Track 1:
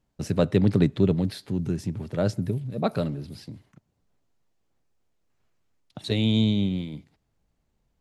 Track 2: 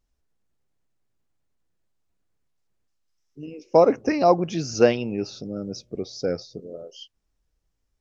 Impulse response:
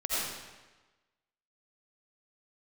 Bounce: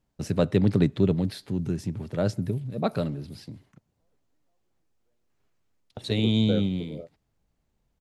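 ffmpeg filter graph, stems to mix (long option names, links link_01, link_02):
-filter_complex "[0:a]volume=-1dB,asplit=2[link_01][link_02];[1:a]lowpass=frequency=2000:width=0.5412,lowpass=frequency=2000:width=1.3066,alimiter=limit=-11.5dB:level=0:latency=1,adelay=250,volume=-3.5dB[link_03];[link_02]apad=whole_len=363988[link_04];[link_03][link_04]sidechaingate=range=-57dB:threshold=-45dB:ratio=16:detection=peak[link_05];[link_01][link_05]amix=inputs=2:normalize=0"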